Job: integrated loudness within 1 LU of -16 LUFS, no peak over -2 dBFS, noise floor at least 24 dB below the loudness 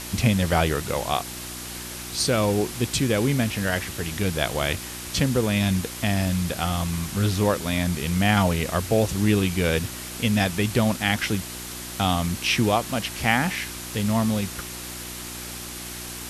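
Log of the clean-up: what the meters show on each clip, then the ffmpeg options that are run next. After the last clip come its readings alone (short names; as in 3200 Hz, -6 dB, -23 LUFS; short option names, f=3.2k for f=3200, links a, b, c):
hum 60 Hz; harmonics up to 360 Hz; hum level -40 dBFS; noise floor -36 dBFS; noise floor target -49 dBFS; loudness -24.5 LUFS; peak -6.0 dBFS; loudness target -16.0 LUFS
-> -af "bandreject=f=60:t=h:w=4,bandreject=f=120:t=h:w=4,bandreject=f=180:t=h:w=4,bandreject=f=240:t=h:w=4,bandreject=f=300:t=h:w=4,bandreject=f=360:t=h:w=4"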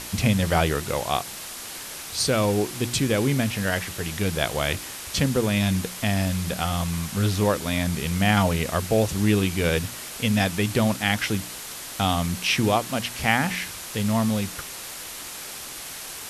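hum none; noise floor -37 dBFS; noise floor target -49 dBFS
-> -af "afftdn=nr=12:nf=-37"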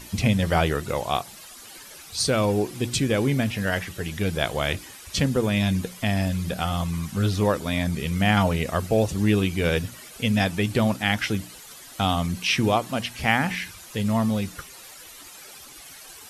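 noise floor -44 dBFS; noise floor target -49 dBFS
-> -af "afftdn=nr=6:nf=-44"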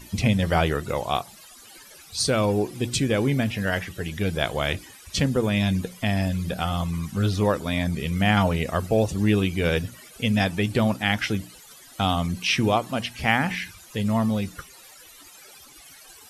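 noise floor -48 dBFS; noise floor target -49 dBFS
-> -af "afftdn=nr=6:nf=-48"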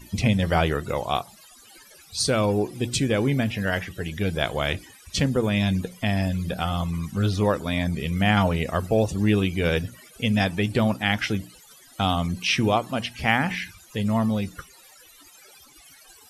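noise floor -51 dBFS; loudness -24.5 LUFS; peak -6.0 dBFS; loudness target -16.0 LUFS
-> -af "volume=8.5dB,alimiter=limit=-2dB:level=0:latency=1"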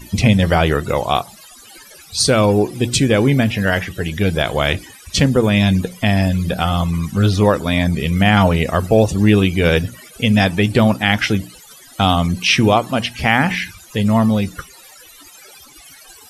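loudness -16.0 LUFS; peak -2.0 dBFS; noise floor -43 dBFS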